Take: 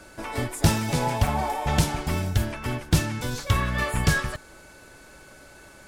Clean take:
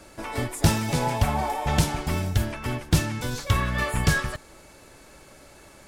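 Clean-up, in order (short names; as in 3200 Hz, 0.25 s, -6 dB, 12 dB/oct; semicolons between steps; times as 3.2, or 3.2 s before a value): notch 1500 Hz, Q 30; interpolate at 1.27, 3.8 ms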